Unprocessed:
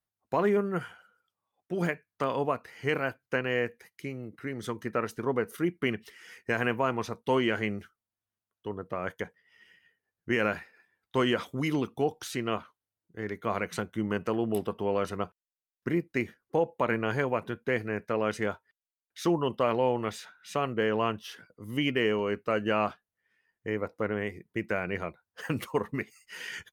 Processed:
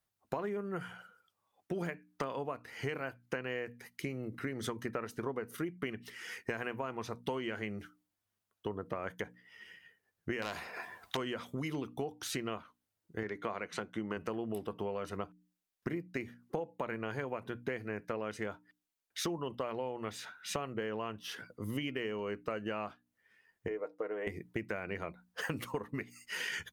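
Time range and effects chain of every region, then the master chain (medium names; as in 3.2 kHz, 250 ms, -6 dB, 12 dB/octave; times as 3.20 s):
10.42–11.17 s: self-modulated delay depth 0.086 ms + small resonant body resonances 710/1000 Hz, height 14 dB, ringing for 25 ms + spectrum-flattening compressor 2:1
13.23–14.17 s: high-pass 250 Hz 6 dB/octave + distance through air 56 m
23.68–24.27 s: band-pass filter 450 Hz, Q 1.8 + tilt EQ +4.5 dB/octave + comb 6.5 ms, depth 55%
whole clip: hum notches 60/120/180/240/300 Hz; compression 12:1, threshold -39 dBFS; trim +5 dB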